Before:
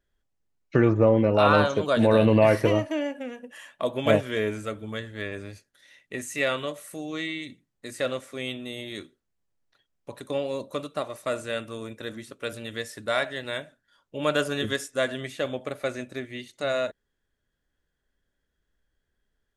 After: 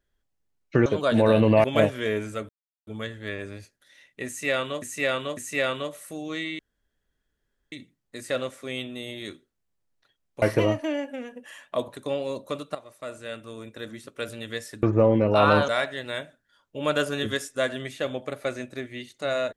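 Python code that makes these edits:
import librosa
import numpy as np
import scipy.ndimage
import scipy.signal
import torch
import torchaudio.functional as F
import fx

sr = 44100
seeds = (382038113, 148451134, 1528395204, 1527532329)

y = fx.edit(x, sr, fx.move(start_s=0.86, length_s=0.85, to_s=13.07),
    fx.move(start_s=2.49, length_s=1.46, to_s=10.12),
    fx.insert_silence(at_s=4.8, length_s=0.38),
    fx.repeat(start_s=6.2, length_s=0.55, count=3),
    fx.insert_room_tone(at_s=7.42, length_s=1.13),
    fx.fade_in_from(start_s=10.99, length_s=1.4, floor_db=-13.0), tone=tone)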